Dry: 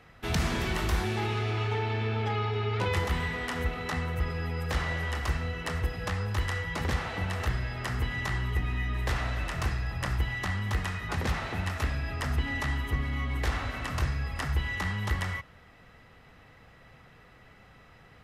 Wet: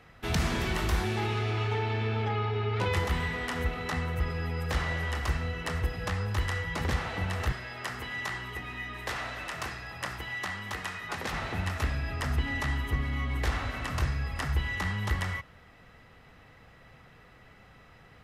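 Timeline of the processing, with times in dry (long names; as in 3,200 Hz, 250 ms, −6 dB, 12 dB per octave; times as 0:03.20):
0:02.25–0:02.77: low-pass filter 3,500 Hz 6 dB per octave
0:07.52–0:11.33: high-pass filter 440 Hz 6 dB per octave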